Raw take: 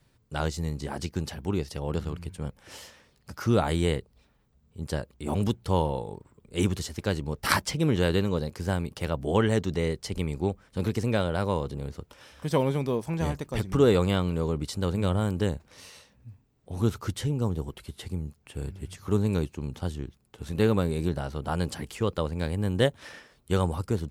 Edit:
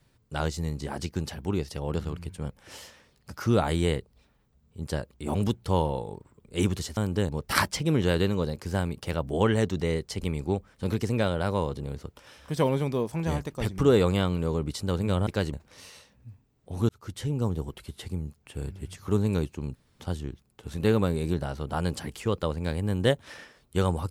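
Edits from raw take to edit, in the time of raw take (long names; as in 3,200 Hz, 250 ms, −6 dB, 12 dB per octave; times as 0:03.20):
0:06.97–0:07.23: swap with 0:15.21–0:15.53
0:16.89–0:17.36: fade in linear
0:19.75: splice in room tone 0.25 s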